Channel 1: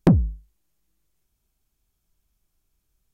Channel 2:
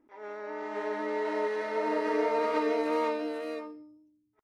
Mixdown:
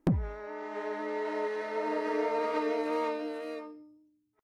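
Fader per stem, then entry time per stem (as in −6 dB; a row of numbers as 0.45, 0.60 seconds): −11.5, −2.5 decibels; 0.00, 0.00 seconds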